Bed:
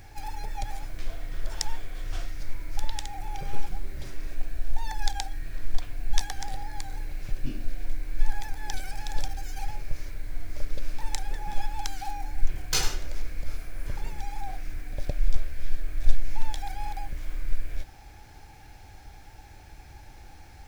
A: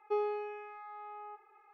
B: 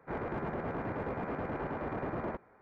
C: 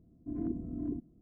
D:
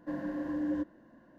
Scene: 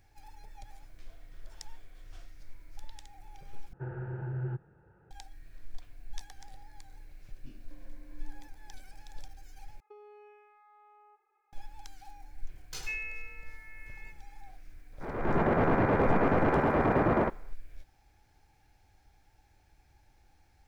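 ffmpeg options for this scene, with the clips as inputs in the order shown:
-filter_complex "[4:a]asplit=2[s0][s1];[1:a]asplit=2[s2][s3];[0:a]volume=0.15[s4];[s0]highpass=f=240:t=q:w=0.5412,highpass=f=240:t=q:w=1.307,lowpass=f=2700:t=q:w=0.5176,lowpass=f=2700:t=q:w=0.7071,lowpass=f=2700:t=q:w=1.932,afreqshift=-170[s5];[s1]acompressor=threshold=0.00708:ratio=6:attack=3.2:release=140:knee=1:detection=peak[s6];[s2]acompressor=threshold=0.0112:ratio=6:attack=16:release=79:knee=1:detection=peak[s7];[s3]lowpass=f=2600:t=q:w=0.5098,lowpass=f=2600:t=q:w=0.6013,lowpass=f=2600:t=q:w=0.9,lowpass=f=2600:t=q:w=2.563,afreqshift=-3000[s8];[2:a]dynaudnorm=f=140:g=5:m=5.96[s9];[s4]asplit=3[s10][s11][s12];[s10]atrim=end=3.734[s13];[s5]atrim=end=1.38,asetpts=PTS-STARTPTS,volume=0.841[s14];[s11]atrim=start=5.106:end=9.804[s15];[s7]atrim=end=1.73,asetpts=PTS-STARTPTS,volume=0.224[s16];[s12]atrim=start=11.526[s17];[s6]atrim=end=1.38,asetpts=PTS-STARTPTS,volume=0.237,afade=t=in:d=0.004:c=hsin,afade=t=out:st=1.376:d=0.004:c=hsin,adelay=7640[s18];[s8]atrim=end=1.73,asetpts=PTS-STARTPTS,volume=0.562,afade=t=in:d=0.004:c=hsin,afade=t=out:st=1.726:d=0.004:c=hsin,adelay=12760[s19];[s9]atrim=end=2.61,asetpts=PTS-STARTPTS,volume=0.596,afade=t=in:d=0.004:c=hsin,afade=t=out:st=2.606:d=0.004:c=hsin,adelay=14930[s20];[s13][s14]acrossfade=d=0.004:c1=hsin:c2=hsin[s21];[s21][s15]acrossfade=d=0.004:c1=hsin:c2=hsin[s22];[s22][s16]acrossfade=d=0.004:c1=hsin:c2=hsin[s23];[s23][s17]acrossfade=d=0.004:c1=hsin:c2=hsin[s24];[s24][s18][s19][s20]amix=inputs=4:normalize=0"

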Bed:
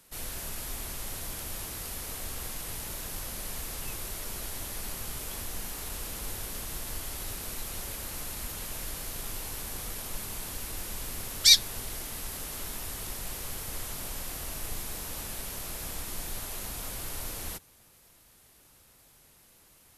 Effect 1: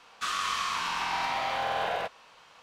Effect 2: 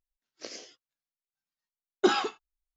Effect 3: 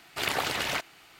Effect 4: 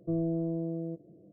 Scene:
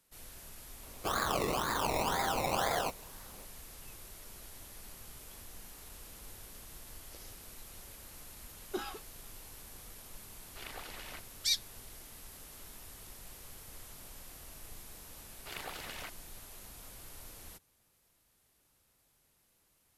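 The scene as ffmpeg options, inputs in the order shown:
-filter_complex "[3:a]asplit=2[s0][s1];[0:a]volume=0.224[s2];[1:a]acrusher=samples=22:mix=1:aa=0.000001:lfo=1:lforange=13.2:lforate=2[s3];[s0]lowpass=f=6500:w=0.5412,lowpass=f=6500:w=1.3066[s4];[s3]atrim=end=2.62,asetpts=PTS-STARTPTS,volume=0.794,afade=t=in:d=0.004:c=hsin,afade=t=out:st=2.616:d=0.004:c=hsin,adelay=830[s5];[2:a]atrim=end=2.76,asetpts=PTS-STARTPTS,volume=0.168,afade=t=in:d=0.004:c=hsin,afade=t=out:st=2.756:d=0.004:c=hsin,adelay=6700[s6];[s4]atrim=end=1.19,asetpts=PTS-STARTPTS,volume=0.126,afade=t=in:d=0.004:c=hsin,afade=t=out:st=1.186:d=0.004:c=hsin,adelay=10390[s7];[s1]atrim=end=1.19,asetpts=PTS-STARTPTS,volume=0.178,afade=t=in:d=0.004:c=hsin,afade=t=out:st=1.186:d=0.004:c=hsin,adelay=15290[s8];[s2][s5][s6][s7][s8]amix=inputs=5:normalize=0"

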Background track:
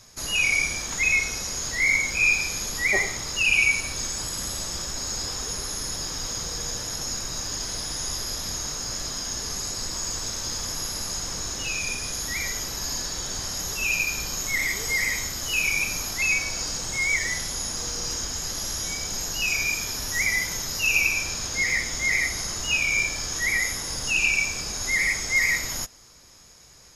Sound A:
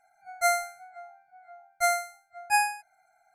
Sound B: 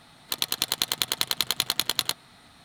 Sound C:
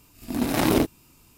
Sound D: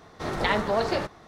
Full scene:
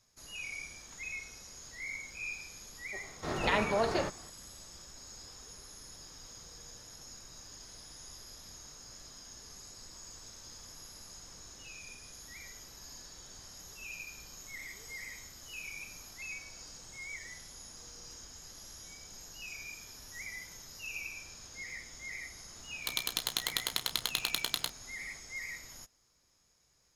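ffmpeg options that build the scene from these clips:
-filter_complex "[0:a]volume=0.1[s0];[2:a]asplit=2[s1][s2];[s2]adelay=32,volume=0.266[s3];[s1][s3]amix=inputs=2:normalize=0[s4];[4:a]atrim=end=1.27,asetpts=PTS-STARTPTS,volume=0.562,afade=t=in:d=0.004:c=hsin,afade=t=out:st=1.266:d=0.004:c=hsin,adelay=3030[s5];[s4]atrim=end=2.64,asetpts=PTS-STARTPTS,volume=0.398,afade=t=in:d=0.004:c=hsin,afade=t=out:st=2.636:d=0.004:c=hsin,adelay=22550[s6];[s0][s5][s6]amix=inputs=3:normalize=0"

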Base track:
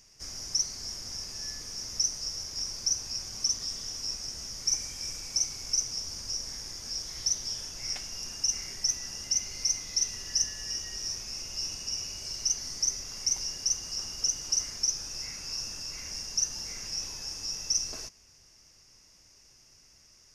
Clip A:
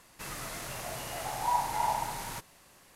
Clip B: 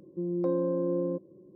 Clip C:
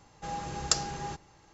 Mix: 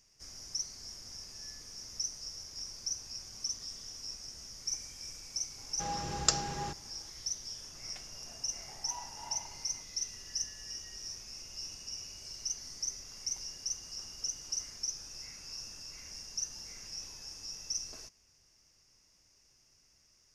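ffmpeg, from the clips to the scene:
-filter_complex "[0:a]volume=0.376[s0];[1:a]adynamicsmooth=sensitivity=4:basefreq=550[s1];[3:a]atrim=end=1.53,asetpts=PTS-STARTPTS,volume=0.891,afade=t=in:d=0.004:c=hsin,afade=t=out:st=1.526:d=0.004:c=hsin,adelay=245637S[s2];[s1]atrim=end=2.95,asetpts=PTS-STARTPTS,volume=0.133,afade=t=in:d=0.004:c=hsin,afade=t=out:st=2.946:d=0.004:c=hsin,adelay=7430[s3];[s0][s2][s3]amix=inputs=3:normalize=0"

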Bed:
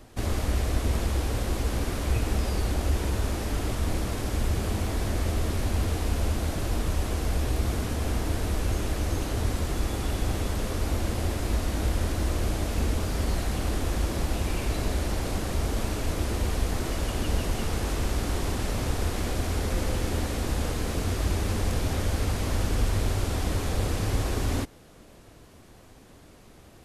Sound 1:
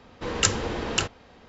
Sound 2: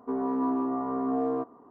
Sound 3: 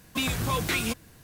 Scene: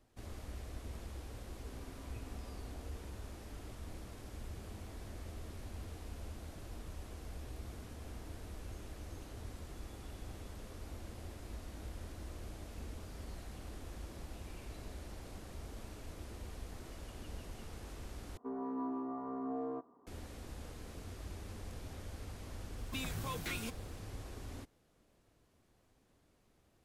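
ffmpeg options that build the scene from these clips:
-filter_complex "[2:a]asplit=2[s0][s1];[0:a]volume=0.1[s2];[s0]acompressor=threshold=0.0112:ratio=6:attack=3.2:release=140:knee=1:detection=peak[s3];[s2]asplit=2[s4][s5];[s4]atrim=end=18.374[s6];[s1]atrim=end=1.7,asetpts=PTS-STARTPTS,volume=0.266[s7];[s5]atrim=start=20.066[s8];[s3]atrim=end=1.7,asetpts=PTS-STARTPTS,volume=0.141,afade=t=in:d=0.004:c=hsin,afade=t=out:st=1.696:d=0.004:c=hsin,adelay=1580[s9];[3:a]atrim=end=1.23,asetpts=PTS-STARTPTS,volume=0.211,afade=t=in:d=0.004:c=hsin,afade=t=out:st=1.226:d=0.004:c=hsin,adelay=22770[s10];[s6][s7]acrossfade=d=0.004:c1=hsin:c2=hsin[s11];[s11][s8]acrossfade=d=0.004:c1=hsin:c2=hsin[s12];[s12][s9][s10]amix=inputs=3:normalize=0"

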